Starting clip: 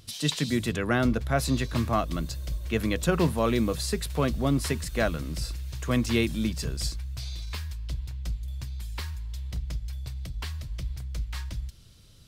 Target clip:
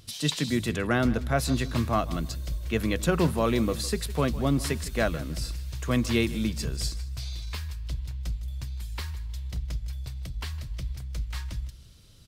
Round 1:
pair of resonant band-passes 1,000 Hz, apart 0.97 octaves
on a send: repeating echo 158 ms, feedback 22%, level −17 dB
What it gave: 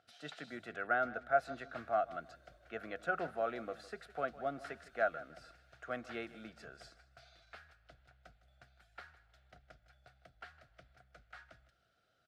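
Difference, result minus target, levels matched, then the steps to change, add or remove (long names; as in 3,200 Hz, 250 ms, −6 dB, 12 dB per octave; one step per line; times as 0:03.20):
1,000 Hz band +5.0 dB
remove: pair of resonant band-passes 1,000 Hz, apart 0.97 octaves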